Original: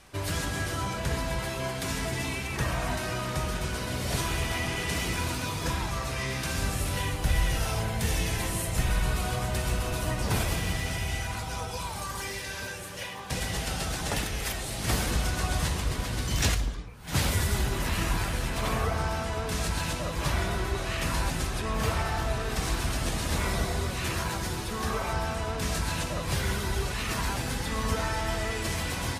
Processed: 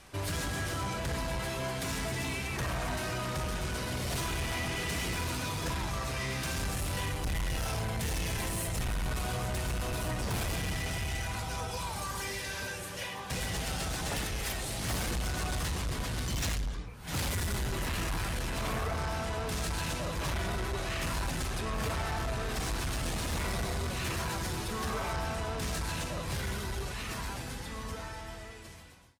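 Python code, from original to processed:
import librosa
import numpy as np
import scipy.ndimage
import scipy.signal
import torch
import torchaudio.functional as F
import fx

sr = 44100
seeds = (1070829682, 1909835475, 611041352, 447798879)

y = fx.fade_out_tail(x, sr, length_s=4.04)
y = 10.0 ** (-29.0 / 20.0) * np.tanh(y / 10.0 ** (-29.0 / 20.0))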